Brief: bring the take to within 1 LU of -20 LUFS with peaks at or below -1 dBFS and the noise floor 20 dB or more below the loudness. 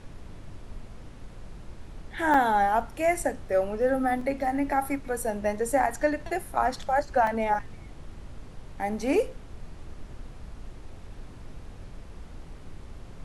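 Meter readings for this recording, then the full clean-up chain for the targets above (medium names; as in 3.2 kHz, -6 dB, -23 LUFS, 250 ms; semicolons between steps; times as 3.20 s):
dropouts 3; longest dropout 3.0 ms; noise floor -45 dBFS; noise floor target -47 dBFS; loudness -26.5 LUFS; peak level -11.0 dBFS; loudness target -20.0 LUFS
-> interpolate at 2.34/4.21/7.27 s, 3 ms; noise print and reduce 6 dB; trim +6.5 dB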